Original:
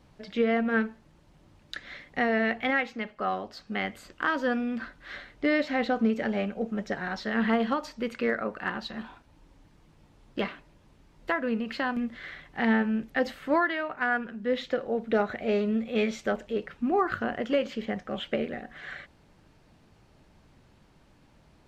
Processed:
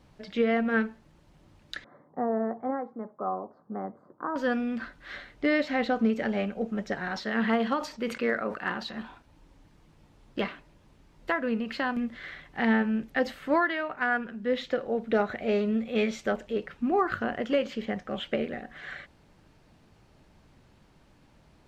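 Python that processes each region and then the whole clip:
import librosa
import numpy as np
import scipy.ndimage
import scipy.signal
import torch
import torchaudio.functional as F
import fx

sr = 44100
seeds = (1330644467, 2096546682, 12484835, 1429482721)

y = fx.chain(x, sr, fx.ellip_bandpass(low_hz=120.0, high_hz=1100.0, order=3, stop_db=40),
    fx.low_shelf(hz=190.0, db=-3.5), at=(1.84, 4.36))
y = fx.chain(y, sr, fx.low_shelf(hz=67.0, db=-11.5),
    fx.sustainer(db_per_s=120.0), at=(7.11, 8.96))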